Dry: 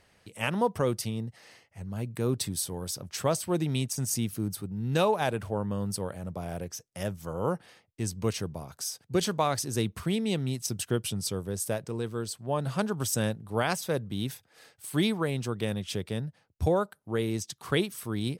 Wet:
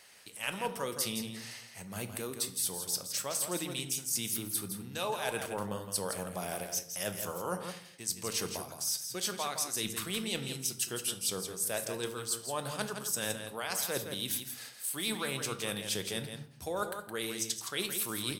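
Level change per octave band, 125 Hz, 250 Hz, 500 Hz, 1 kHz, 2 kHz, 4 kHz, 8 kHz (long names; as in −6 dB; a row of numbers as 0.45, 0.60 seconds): −13.5, −10.0, −7.5, −5.5, −1.5, +1.0, +2.5 decibels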